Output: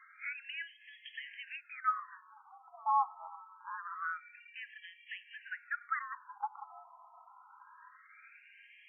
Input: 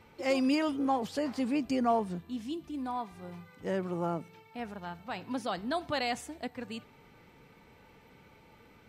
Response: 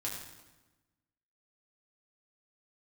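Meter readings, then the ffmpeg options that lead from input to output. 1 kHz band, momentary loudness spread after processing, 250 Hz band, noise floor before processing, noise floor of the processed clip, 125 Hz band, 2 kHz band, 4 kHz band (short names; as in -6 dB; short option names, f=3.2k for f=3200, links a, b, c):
-1.0 dB, 22 LU, under -40 dB, -59 dBFS, -61 dBFS, under -40 dB, +0.5 dB, -10.0 dB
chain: -filter_complex "[0:a]lowpass=3.8k,acrossover=split=190|1400[a][b][c];[c]acompressor=threshold=-52dB:ratio=6[d];[a][b][d]amix=inputs=3:normalize=0,afreqshift=110,afftfilt=real='re*between(b*sr/1024,930*pow(2400/930,0.5+0.5*sin(2*PI*0.25*pts/sr))/1.41,930*pow(2400/930,0.5+0.5*sin(2*PI*0.25*pts/sr))*1.41)':imag='im*between(b*sr/1024,930*pow(2400/930,0.5+0.5*sin(2*PI*0.25*pts/sr))/1.41,930*pow(2400/930,0.5+0.5*sin(2*PI*0.25*pts/sr))*1.41)':win_size=1024:overlap=0.75,volume=8dB"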